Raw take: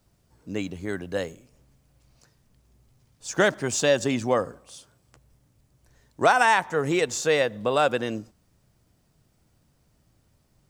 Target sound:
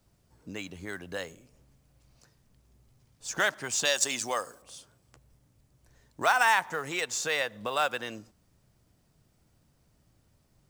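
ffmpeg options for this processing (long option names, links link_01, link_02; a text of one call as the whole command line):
ffmpeg -i in.wav -filter_complex "[0:a]asettb=1/sr,asplit=3[link_01][link_02][link_03];[link_01]atrim=end=3.854[link_04];[link_02]atrim=start=3.85:end=4.62,asetpts=PTS-STARTPTS,afade=type=in:duration=0.004:curve=qsin,afade=type=out:start_time=0.766:duration=0.004:curve=qsin,bass=frequency=250:gain=-9,treble=frequency=4000:gain=13[link_05];[link_03]atrim=start=4.616[link_06];[link_04][link_05]acrossfade=duration=0.004:curve1=hsin:curve2=qsin[link_07];[link_07][link_06]acrossfade=duration=0.004:curve1=qsin:curve2=hsin,acrossover=split=760[link_08][link_09];[link_08]acompressor=threshold=-37dB:ratio=6[link_10];[link_09]acrusher=bits=5:mode=log:mix=0:aa=0.000001[link_11];[link_10][link_11]amix=inputs=2:normalize=0,volume=-2dB" out.wav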